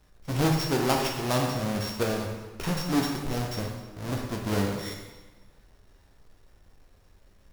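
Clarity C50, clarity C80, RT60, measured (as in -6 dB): 3.5 dB, 5.5 dB, 1.3 s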